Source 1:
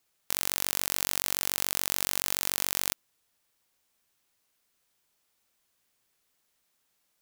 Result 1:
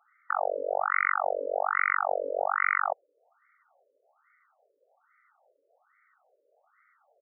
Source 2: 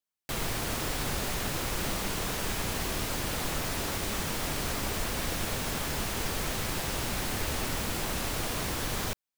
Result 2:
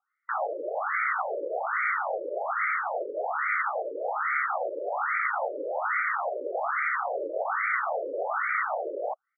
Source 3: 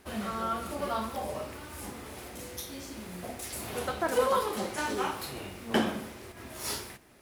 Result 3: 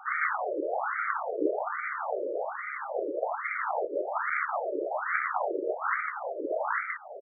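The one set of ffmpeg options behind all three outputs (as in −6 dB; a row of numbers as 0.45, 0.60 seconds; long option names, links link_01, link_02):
-filter_complex "[0:a]bandreject=frequency=60:width_type=h:width=6,bandreject=frequency=120:width_type=h:width=6,bandreject=frequency=180:width_type=h:width=6,bandreject=frequency=240:width_type=h:width=6,bandreject=frequency=300:width_type=h:width=6,asplit=2[link_01][link_02];[link_02]aeval=exprs='clip(val(0),-1,0.133)':channel_layout=same,volume=-5.5dB[link_03];[link_01][link_03]amix=inputs=2:normalize=0,afftfilt=real='re*lt(hypot(re,im),0.0708)':imag='im*lt(hypot(re,im),0.0708)':win_size=1024:overlap=0.75,acrossover=split=4900[link_04][link_05];[link_05]acompressor=threshold=-38dB:ratio=4:attack=1:release=60[link_06];[link_04][link_06]amix=inputs=2:normalize=0,equalizer=frequency=100:width=0.38:gain=15,aecho=1:1:1.5:0.87,acontrast=43,aeval=exprs='0.501*(cos(1*acos(clip(val(0)/0.501,-1,1)))-cos(1*PI/2))+0.0282*(cos(2*acos(clip(val(0)/0.501,-1,1)))-cos(2*PI/2))+0.00562*(cos(5*acos(clip(val(0)/0.501,-1,1)))-cos(5*PI/2))+0.02*(cos(6*acos(clip(val(0)/0.501,-1,1)))-cos(6*PI/2))+0.178*(cos(7*acos(clip(val(0)/0.501,-1,1)))-cos(7*PI/2))':channel_layout=same,highshelf=frequency=5100:gain=7,afftfilt=real='re*between(b*sr/1024,420*pow(1700/420,0.5+0.5*sin(2*PI*1.2*pts/sr))/1.41,420*pow(1700/420,0.5+0.5*sin(2*PI*1.2*pts/sr))*1.41)':imag='im*between(b*sr/1024,420*pow(1700/420,0.5+0.5*sin(2*PI*1.2*pts/sr))/1.41,420*pow(1700/420,0.5+0.5*sin(2*PI*1.2*pts/sr))*1.41)':win_size=1024:overlap=0.75,volume=4.5dB"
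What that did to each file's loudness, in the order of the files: 0.0, +2.5, +2.5 LU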